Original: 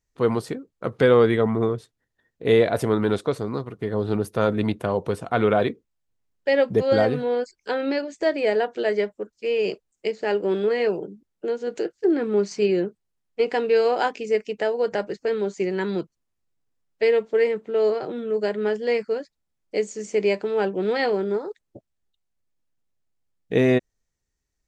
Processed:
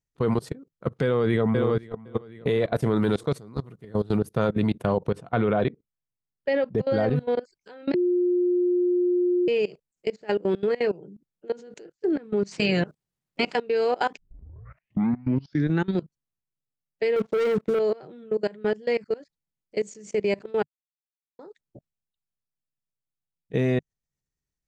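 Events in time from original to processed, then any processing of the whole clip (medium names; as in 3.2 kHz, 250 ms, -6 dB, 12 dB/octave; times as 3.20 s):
1.03–1.70 s: echo throw 510 ms, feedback 35%, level -5 dB
2.96–4.19 s: treble shelf 5.1 kHz +9.5 dB
5.08–7.16 s: low-pass 3 kHz 6 dB/octave
7.94–9.48 s: bleep 356 Hz -17.5 dBFS
12.51–13.54 s: spectral peaks clipped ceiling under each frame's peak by 21 dB
14.17 s: tape start 1.81 s
17.16–17.79 s: waveshaping leveller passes 3
20.63–21.39 s: mute
whole clip: peaking EQ 150 Hz +10 dB 0.77 oct; level held to a coarse grid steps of 22 dB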